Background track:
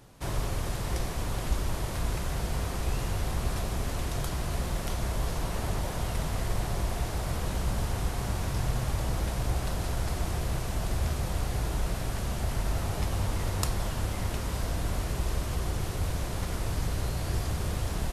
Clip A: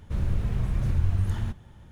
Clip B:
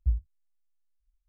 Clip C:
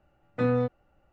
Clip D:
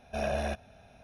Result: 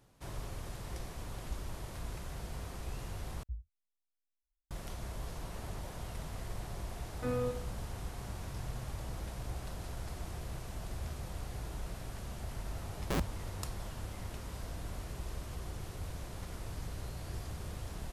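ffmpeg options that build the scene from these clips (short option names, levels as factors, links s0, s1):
-filter_complex "[2:a]asplit=2[s0][s1];[0:a]volume=0.266[s2];[3:a]aecho=1:1:83|166|249|332:0.316|0.13|0.0532|0.0218[s3];[s1]aeval=exprs='(mod(20*val(0)+1,2)-1)/20':c=same[s4];[s2]asplit=2[s5][s6];[s5]atrim=end=3.434[s7];[s0]atrim=end=1.28,asetpts=PTS-STARTPTS,volume=0.158[s8];[s6]atrim=start=4.706[s9];[s3]atrim=end=1.12,asetpts=PTS-STARTPTS,volume=0.299,afade=t=in:d=0.004:c=hsin,afade=t=out:st=1.116:d=0.004:c=hsin,adelay=6840[s10];[s4]atrim=end=1.28,asetpts=PTS-STARTPTS,volume=0.891,afade=t=in:d=0.004:c=hsin,afade=t=out:st=1.276:d=0.004:c=hsin,adelay=13040[s11];[s7][s8]acrossfade=d=0.004:c1=hsin:c2=hsin[s12];[s12][s9]acrossfade=d=0.004:c1=hsin:c2=hsin[s13];[s13][s10][s11]amix=inputs=3:normalize=0"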